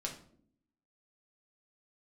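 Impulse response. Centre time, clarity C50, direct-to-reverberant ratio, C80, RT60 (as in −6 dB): 18 ms, 9.0 dB, −0.5 dB, 13.0 dB, 0.60 s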